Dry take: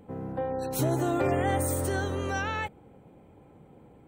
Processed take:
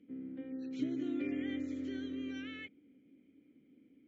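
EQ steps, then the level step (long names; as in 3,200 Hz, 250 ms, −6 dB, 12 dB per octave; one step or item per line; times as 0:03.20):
formant filter i
linear-phase brick-wall low-pass 7,500 Hz
parametric band 130 Hz −5 dB 0.99 octaves
+1.5 dB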